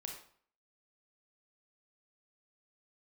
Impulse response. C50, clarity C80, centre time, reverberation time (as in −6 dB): 4.5 dB, 8.5 dB, 30 ms, 0.55 s